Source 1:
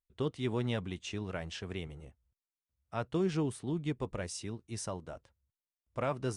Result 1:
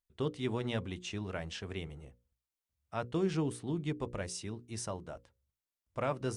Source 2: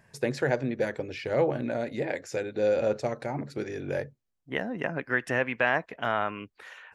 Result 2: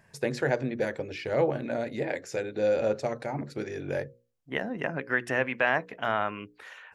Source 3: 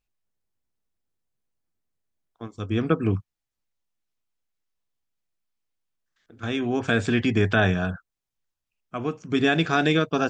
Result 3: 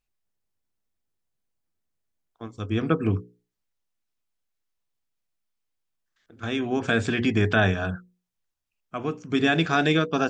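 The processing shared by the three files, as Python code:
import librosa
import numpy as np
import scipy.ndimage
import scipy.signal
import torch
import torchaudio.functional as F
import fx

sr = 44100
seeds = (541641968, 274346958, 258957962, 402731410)

y = fx.hum_notches(x, sr, base_hz=60, count=9)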